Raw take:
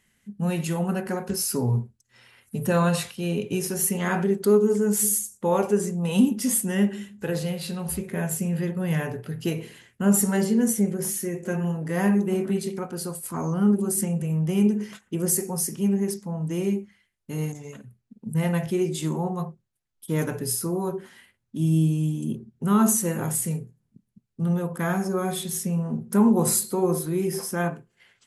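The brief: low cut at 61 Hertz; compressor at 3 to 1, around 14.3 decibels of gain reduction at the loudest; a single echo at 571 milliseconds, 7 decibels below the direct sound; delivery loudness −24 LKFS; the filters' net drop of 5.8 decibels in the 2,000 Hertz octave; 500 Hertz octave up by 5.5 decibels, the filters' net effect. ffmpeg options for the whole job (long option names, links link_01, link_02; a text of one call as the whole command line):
ffmpeg -i in.wav -af "highpass=61,equalizer=frequency=500:width_type=o:gain=7.5,equalizer=frequency=2000:width_type=o:gain=-8.5,acompressor=threshold=-31dB:ratio=3,aecho=1:1:571:0.447,volume=8dB" out.wav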